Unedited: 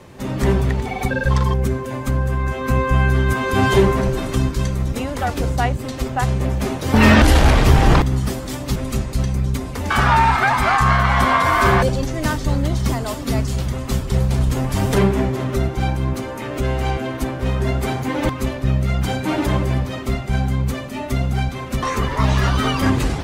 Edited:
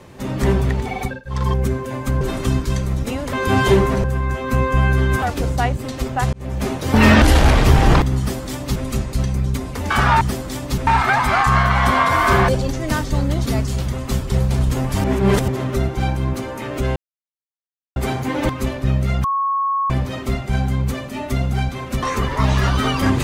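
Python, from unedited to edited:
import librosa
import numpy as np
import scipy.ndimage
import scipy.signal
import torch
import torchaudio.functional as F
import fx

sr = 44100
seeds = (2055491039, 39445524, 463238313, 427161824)

y = fx.edit(x, sr, fx.fade_down_up(start_s=0.98, length_s=0.51, db=-24.0, fade_s=0.24),
    fx.swap(start_s=2.21, length_s=1.18, other_s=4.1, other_length_s=1.12),
    fx.fade_in_span(start_s=6.33, length_s=0.31),
    fx.duplicate(start_s=8.19, length_s=0.66, to_s=10.21),
    fx.cut(start_s=12.8, length_s=0.46),
    fx.reverse_span(start_s=14.84, length_s=0.44),
    fx.silence(start_s=16.76, length_s=1.0),
    fx.bleep(start_s=19.04, length_s=0.66, hz=1100.0, db=-16.5), tone=tone)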